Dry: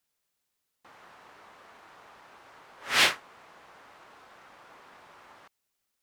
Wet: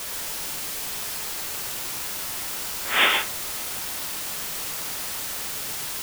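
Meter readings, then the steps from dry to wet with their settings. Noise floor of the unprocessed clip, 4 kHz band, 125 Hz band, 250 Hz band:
-81 dBFS, +5.5 dB, +10.5 dB, +8.0 dB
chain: FFT band-pass 170–3700 Hz; word length cut 6-bit, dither triangular; gated-style reverb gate 150 ms rising, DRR 3 dB; trim +3 dB

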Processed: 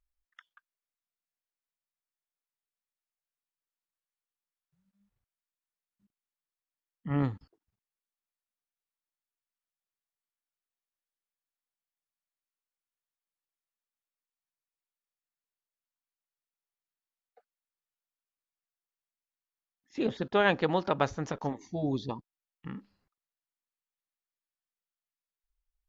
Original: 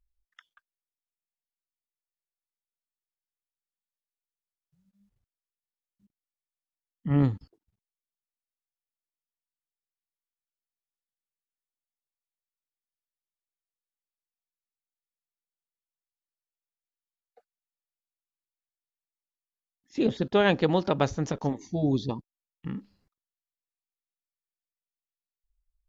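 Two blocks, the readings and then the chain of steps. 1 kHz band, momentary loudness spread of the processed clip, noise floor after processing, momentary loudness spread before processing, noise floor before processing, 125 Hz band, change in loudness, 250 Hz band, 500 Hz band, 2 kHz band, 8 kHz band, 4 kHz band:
-0.5 dB, 19 LU, under -85 dBFS, 16 LU, under -85 dBFS, -6.5 dB, -3.5 dB, -6.0 dB, -3.5 dB, 0.0 dB, no reading, -3.5 dB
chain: peaking EQ 1.3 kHz +8 dB 2.4 oct; trim -7 dB

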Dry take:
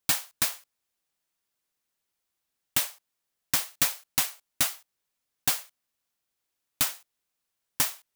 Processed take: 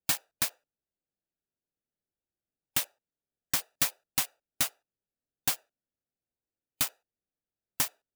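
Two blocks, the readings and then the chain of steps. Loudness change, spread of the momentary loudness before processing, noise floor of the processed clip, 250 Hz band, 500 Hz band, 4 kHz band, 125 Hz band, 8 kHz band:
-3.5 dB, 9 LU, under -85 dBFS, -2.5 dB, -3.0 dB, -3.5 dB, -2.5 dB, -3.5 dB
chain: local Wiener filter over 41 samples; harmonic-percussive split harmonic +3 dB; trim -2.5 dB

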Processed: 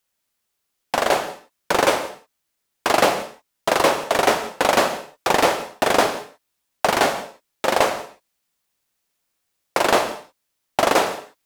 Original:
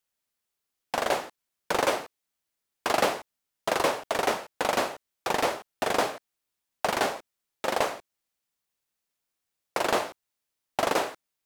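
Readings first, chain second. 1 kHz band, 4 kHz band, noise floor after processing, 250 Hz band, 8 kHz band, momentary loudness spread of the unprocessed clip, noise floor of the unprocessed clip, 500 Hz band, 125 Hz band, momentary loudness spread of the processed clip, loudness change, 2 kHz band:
+8.5 dB, +8.5 dB, -76 dBFS, +8.5 dB, +8.5 dB, 10 LU, -84 dBFS, +8.5 dB, +8.5 dB, 10 LU, +8.5 dB, +8.5 dB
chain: in parallel at +1.5 dB: gain riding within 3 dB; on the sum: gated-style reverb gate 210 ms flat, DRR 11 dB; trim +2 dB

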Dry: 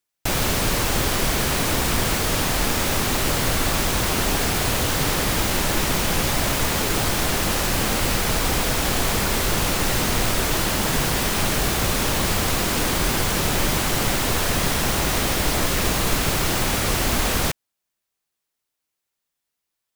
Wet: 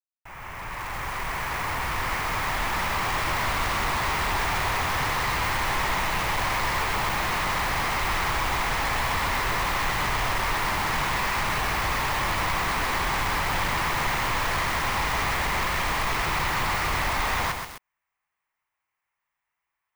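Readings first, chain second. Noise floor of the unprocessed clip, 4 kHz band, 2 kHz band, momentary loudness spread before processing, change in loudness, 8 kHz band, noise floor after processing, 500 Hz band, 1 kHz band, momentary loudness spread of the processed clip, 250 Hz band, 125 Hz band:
-82 dBFS, -7.0 dB, 0.0 dB, 0 LU, -4.5 dB, -12.0 dB, -84 dBFS, -8.0 dB, +1.5 dB, 3 LU, -11.5 dB, -8.0 dB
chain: fade-in on the opening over 3.45 s; ten-band graphic EQ 250 Hz -9 dB, 500 Hz -6 dB, 1 kHz +11 dB, 2 kHz +11 dB, 4 kHz -12 dB, 8 kHz -6 dB, 16 kHz -11 dB; saturation -23 dBFS, distortion -8 dB; peaking EQ 1.5 kHz -4.5 dB 0.57 oct; bit-crushed delay 130 ms, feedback 55%, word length 6-bit, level -4 dB

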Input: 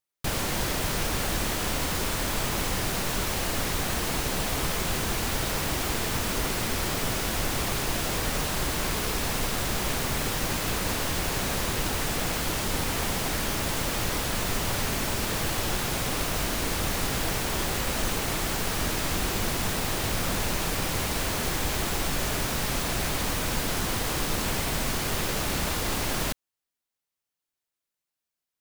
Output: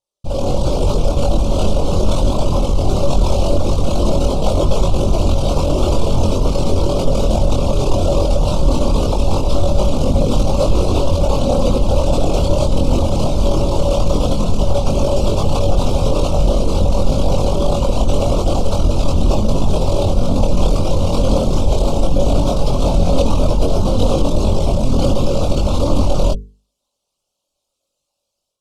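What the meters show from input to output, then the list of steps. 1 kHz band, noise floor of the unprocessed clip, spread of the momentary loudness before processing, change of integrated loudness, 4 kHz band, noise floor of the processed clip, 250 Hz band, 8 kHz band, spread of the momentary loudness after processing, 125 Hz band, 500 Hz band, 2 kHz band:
+8.0 dB, under -85 dBFS, 0 LU, +10.0 dB, +2.0 dB, -76 dBFS, +13.5 dB, -2.5 dB, 2 LU, +15.5 dB, +16.0 dB, -8.0 dB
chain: resonances exaggerated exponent 2; peaking EQ 560 Hz +12.5 dB 0.22 oct; level rider gain up to 11 dB; Butterworth band-stop 1.8 kHz, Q 1; hum notches 50/100/150/200/250/300/350/400/450 Hz; peak limiter -12.5 dBFS, peak gain reduction 7 dB; low-pass 8.1 kHz 12 dB/octave; chorus voices 6, 0.18 Hz, delay 22 ms, depth 2.7 ms; trim +8 dB

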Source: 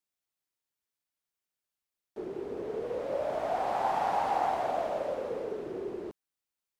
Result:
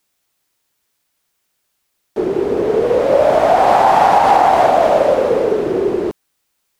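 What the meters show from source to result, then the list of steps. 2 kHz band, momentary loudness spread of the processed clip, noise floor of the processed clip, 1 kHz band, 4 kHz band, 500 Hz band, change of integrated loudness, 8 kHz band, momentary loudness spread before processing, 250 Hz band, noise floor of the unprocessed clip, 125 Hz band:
+19.5 dB, 9 LU, -70 dBFS, +19.0 dB, +19.5 dB, +20.0 dB, +19.5 dB, no reading, 11 LU, +20.5 dB, under -85 dBFS, +20.0 dB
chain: loudness maximiser +21.5 dB; trim -1 dB

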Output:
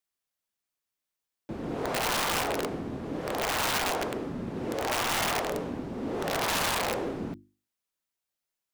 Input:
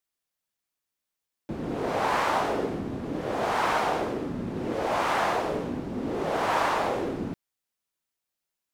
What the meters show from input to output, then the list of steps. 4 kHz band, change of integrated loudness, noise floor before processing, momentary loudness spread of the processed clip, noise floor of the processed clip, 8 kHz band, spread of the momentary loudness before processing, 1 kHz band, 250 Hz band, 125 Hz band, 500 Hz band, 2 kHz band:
+5.5 dB, -2.0 dB, under -85 dBFS, 9 LU, under -85 dBFS, +9.5 dB, 8 LU, -5.0 dB, -3.0 dB, -2.0 dB, -3.5 dB, -0.5 dB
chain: hum notches 50/100/150/200/250/300/350 Hz; integer overflow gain 20 dB; trim -2 dB

